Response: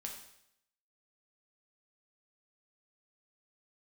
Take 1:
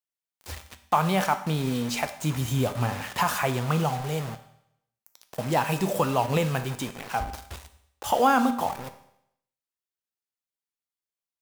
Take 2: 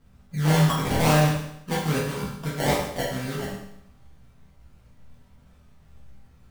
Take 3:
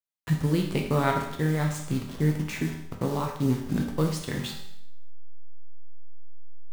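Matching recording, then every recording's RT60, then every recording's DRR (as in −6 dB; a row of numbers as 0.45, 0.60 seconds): 3; 0.75, 0.75, 0.75 seconds; 8.5, −7.5, 0.5 decibels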